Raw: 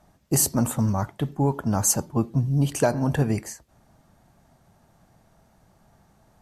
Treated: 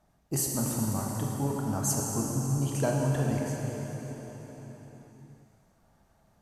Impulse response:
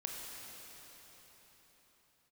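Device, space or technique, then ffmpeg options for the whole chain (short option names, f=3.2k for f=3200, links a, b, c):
cathedral: -filter_complex "[1:a]atrim=start_sample=2205[a];[0:a][a]afir=irnorm=-1:irlink=0,volume=-6dB"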